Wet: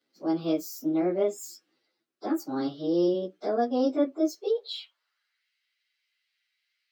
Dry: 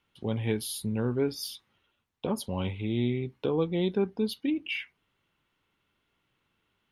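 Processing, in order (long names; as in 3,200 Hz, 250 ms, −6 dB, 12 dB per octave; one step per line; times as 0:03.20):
phase-vocoder pitch shift without resampling +6.5 semitones
high-pass filter sweep 300 Hz → 2,200 Hz, 0:04.14–0:05.50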